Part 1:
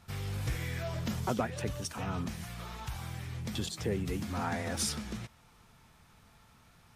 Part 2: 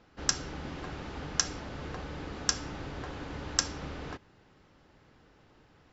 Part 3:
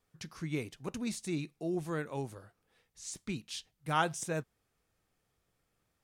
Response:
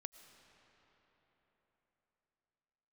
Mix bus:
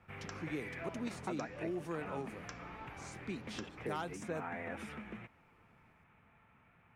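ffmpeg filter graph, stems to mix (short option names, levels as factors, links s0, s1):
-filter_complex "[0:a]highpass=f=120:p=1,highshelf=f=3400:t=q:w=3:g=-12.5,volume=0.668[s0];[1:a]volume=0.251[s1];[2:a]volume=12.6,asoftclip=hard,volume=0.0794,volume=1.12[s2];[s0][s1][s2]amix=inputs=3:normalize=0,acrossover=split=210|3800[s3][s4][s5];[s3]acompressor=threshold=0.002:ratio=4[s6];[s4]acompressor=threshold=0.0158:ratio=4[s7];[s5]acompressor=threshold=0.00501:ratio=4[s8];[s6][s7][s8]amix=inputs=3:normalize=0,highshelf=f=2400:g=-10"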